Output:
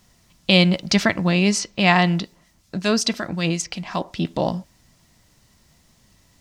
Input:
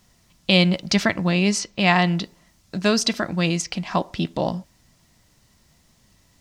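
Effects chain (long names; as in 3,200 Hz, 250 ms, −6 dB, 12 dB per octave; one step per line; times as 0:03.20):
0:02.20–0:04.25: two-band tremolo in antiphase 5.4 Hz, depth 50%, crossover 2,100 Hz
level +1.5 dB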